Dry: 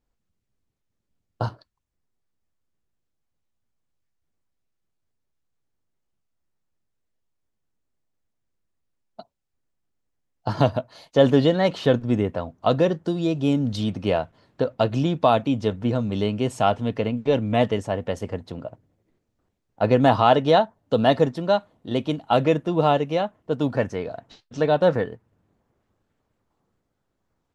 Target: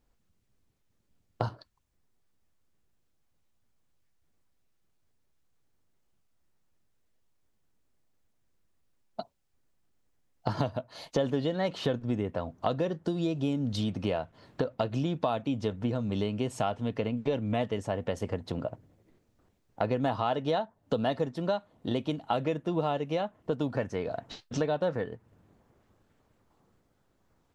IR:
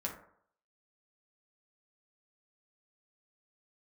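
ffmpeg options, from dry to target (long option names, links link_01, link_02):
-af "acompressor=threshold=-34dB:ratio=4,volume=5dB"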